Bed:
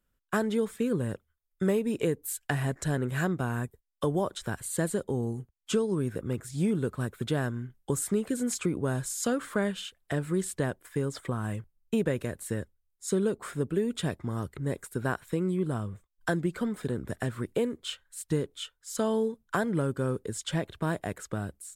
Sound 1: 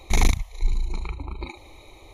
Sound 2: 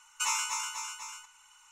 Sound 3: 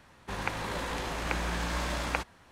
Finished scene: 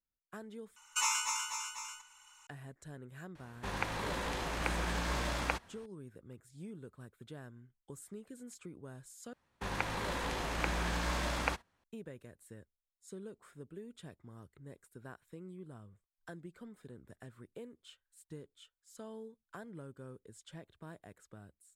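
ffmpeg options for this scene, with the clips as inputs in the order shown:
ffmpeg -i bed.wav -i cue0.wav -i cue1.wav -i cue2.wav -filter_complex "[3:a]asplit=2[link_01][link_02];[0:a]volume=-20dB[link_03];[link_02]agate=range=-17dB:threshold=-53dB:ratio=16:release=100:detection=peak[link_04];[link_03]asplit=3[link_05][link_06][link_07];[link_05]atrim=end=0.764[link_08];[2:a]atrim=end=1.71,asetpts=PTS-STARTPTS,volume=-1.5dB[link_09];[link_06]atrim=start=2.466:end=9.334[link_10];[link_04]atrim=end=2.51,asetpts=PTS-STARTPTS,volume=-2.5dB[link_11];[link_07]atrim=start=11.836[link_12];[link_01]atrim=end=2.51,asetpts=PTS-STARTPTS,volume=-3dB,afade=type=in:duration=0.004:curve=hsin,afade=type=out:start_time=2.506:duration=0.004:curve=hsin,adelay=3350[link_13];[link_08][link_09]acrossfade=duration=0.004:curve1=hsin:curve2=hsin[link_14];[link_14][link_10]acrossfade=duration=0.004:curve1=hsin:curve2=hsin[link_15];[link_15][link_11]acrossfade=duration=0.004:curve1=hsin:curve2=hsin[link_16];[link_16][link_12]acrossfade=duration=0.004:curve1=hsin:curve2=hsin[link_17];[link_17][link_13]amix=inputs=2:normalize=0" out.wav

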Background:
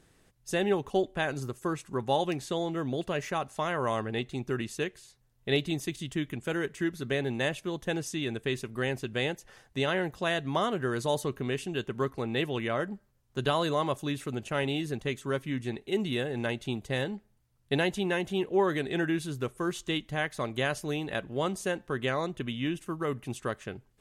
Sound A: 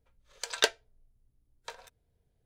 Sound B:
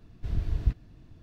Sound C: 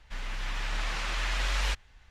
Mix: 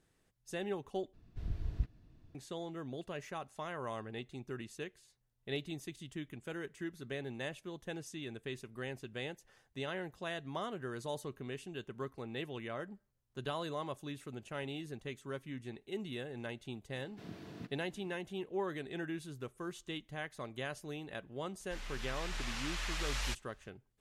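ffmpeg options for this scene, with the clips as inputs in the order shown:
ffmpeg -i bed.wav -i cue0.wav -i cue1.wav -i cue2.wav -filter_complex "[2:a]asplit=2[link_01][link_02];[0:a]volume=-11.5dB[link_03];[link_02]highpass=frequency=180:width=0.5412,highpass=frequency=180:width=1.3066[link_04];[3:a]highshelf=frequency=4700:gain=10[link_05];[link_03]asplit=2[link_06][link_07];[link_06]atrim=end=1.134[link_08];[link_01]atrim=end=1.22,asetpts=PTS-STARTPTS,volume=-9.5dB[link_09];[link_07]atrim=start=2.346[link_10];[link_04]atrim=end=1.22,asetpts=PTS-STARTPTS,volume=-3.5dB,afade=type=in:duration=0.004:curve=hsin,afade=type=out:start_time=1.216:duration=0.004:curve=hsin,adelay=16940[link_11];[link_05]atrim=end=2.1,asetpts=PTS-STARTPTS,volume=-9.5dB,afade=type=in:duration=0.004:curve=hsin,afade=type=out:start_time=2.096:duration=0.004:curve=hsin,adelay=21600[link_12];[link_08][link_09]acrossfade=duration=0.004:curve1=hsin:curve2=hsin[link_13];[link_13][link_10]acrossfade=duration=0.004:curve1=hsin:curve2=hsin[link_14];[link_14][link_11][link_12]amix=inputs=3:normalize=0" out.wav

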